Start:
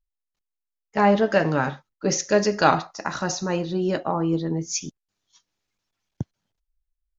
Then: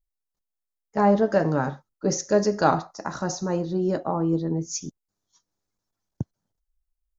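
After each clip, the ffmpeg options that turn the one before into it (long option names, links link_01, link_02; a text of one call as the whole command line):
ffmpeg -i in.wav -af "equalizer=frequency=2700:width=1:gain=-14.5" out.wav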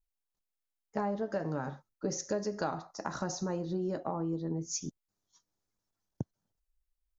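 ffmpeg -i in.wav -af "acompressor=threshold=-27dB:ratio=6,volume=-3.5dB" out.wav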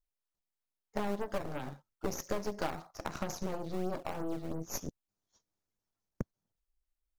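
ffmpeg -i in.wav -filter_complex "[0:a]aeval=exprs='0.141*(cos(1*acos(clip(val(0)/0.141,-1,1)))-cos(1*PI/2))+0.0158*(cos(3*acos(clip(val(0)/0.141,-1,1)))-cos(3*PI/2))+0.0178*(cos(8*acos(clip(val(0)/0.141,-1,1)))-cos(8*PI/2))':channel_layout=same,asplit=2[link_01][link_02];[link_02]acrusher=samples=16:mix=1:aa=0.000001:lfo=1:lforange=25.6:lforate=3,volume=-8dB[link_03];[link_01][link_03]amix=inputs=2:normalize=0,volume=-2.5dB" out.wav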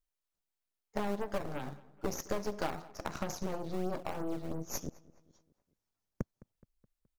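ffmpeg -i in.wav -filter_complex "[0:a]asplit=2[link_01][link_02];[link_02]adelay=211,lowpass=frequency=3500:poles=1,volume=-21dB,asplit=2[link_03][link_04];[link_04]adelay=211,lowpass=frequency=3500:poles=1,volume=0.52,asplit=2[link_05][link_06];[link_06]adelay=211,lowpass=frequency=3500:poles=1,volume=0.52,asplit=2[link_07][link_08];[link_08]adelay=211,lowpass=frequency=3500:poles=1,volume=0.52[link_09];[link_01][link_03][link_05][link_07][link_09]amix=inputs=5:normalize=0" out.wav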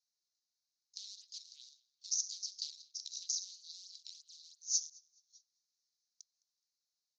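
ffmpeg -i in.wav -af "asuperpass=centerf=5100:order=8:qfactor=1.9,volume=11dB" out.wav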